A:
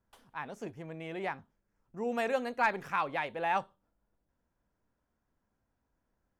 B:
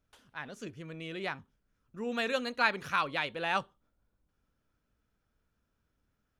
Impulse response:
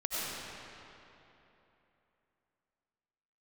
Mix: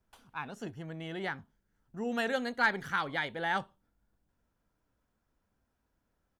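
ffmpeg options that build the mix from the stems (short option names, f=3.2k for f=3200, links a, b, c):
-filter_complex "[0:a]volume=0dB[a];[1:a]adelay=0.5,volume=-5dB[b];[a][b]amix=inputs=2:normalize=0"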